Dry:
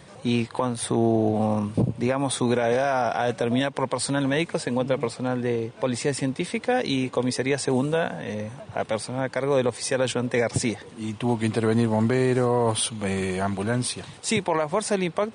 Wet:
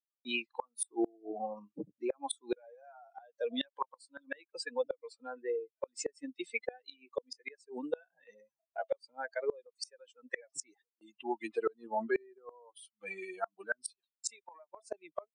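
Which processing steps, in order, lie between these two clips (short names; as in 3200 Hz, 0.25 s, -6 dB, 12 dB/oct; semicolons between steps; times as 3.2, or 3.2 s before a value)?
per-bin expansion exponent 3; gate with hold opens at -56 dBFS; HPF 420 Hz 24 dB/oct; notch 660 Hz, Q 22; flipped gate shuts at -28 dBFS, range -32 dB; gain +7 dB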